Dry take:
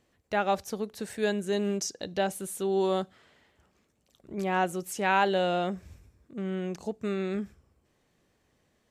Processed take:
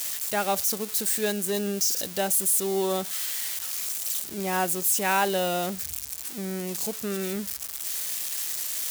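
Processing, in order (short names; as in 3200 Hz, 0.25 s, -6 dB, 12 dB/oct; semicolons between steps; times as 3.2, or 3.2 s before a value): switching spikes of -24 dBFS; high shelf 4000 Hz +5 dB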